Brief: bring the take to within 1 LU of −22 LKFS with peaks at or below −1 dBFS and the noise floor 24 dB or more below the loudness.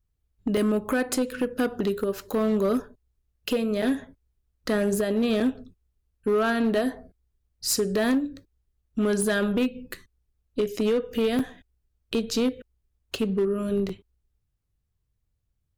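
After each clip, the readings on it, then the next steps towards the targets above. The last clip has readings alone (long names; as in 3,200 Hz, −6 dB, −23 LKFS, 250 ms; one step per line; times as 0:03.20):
share of clipped samples 1.6%; peaks flattened at −18.0 dBFS; number of dropouts 6; longest dropout 4.1 ms; integrated loudness −26.5 LKFS; sample peak −18.0 dBFS; target loudness −22.0 LKFS
→ clipped peaks rebuilt −18 dBFS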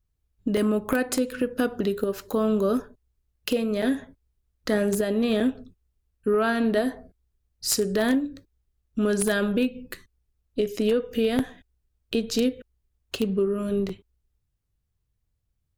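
share of clipped samples 0.0%; number of dropouts 6; longest dropout 4.1 ms
→ repair the gap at 0:00.57/0:02.32/0:03.82/0:05.40/0:11.39/0:13.89, 4.1 ms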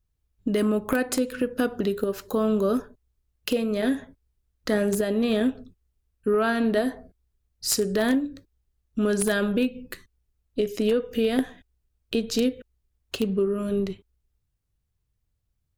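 number of dropouts 0; integrated loudness −25.5 LKFS; sample peak −9.0 dBFS; target loudness −22.0 LKFS
→ level +3.5 dB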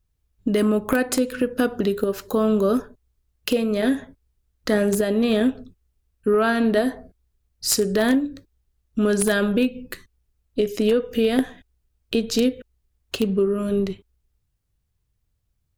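integrated loudness −22.0 LKFS; sample peak −5.5 dBFS; background noise floor −72 dBFS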